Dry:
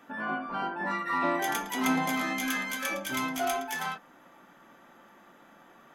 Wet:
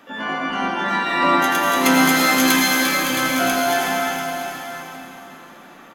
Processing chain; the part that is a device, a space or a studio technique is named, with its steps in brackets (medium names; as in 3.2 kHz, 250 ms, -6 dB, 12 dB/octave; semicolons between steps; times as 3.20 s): 1.86–2.56 s: treble shelf 2.1 kHz +8.5 dB; shimmer-style reverb (harmony voices +12 st -9 dB; reverberation RT60 3.8 s, pre-delay 75 ms, DRR -2.5 dB); delay 688 ms -12 dB; trim +6 dB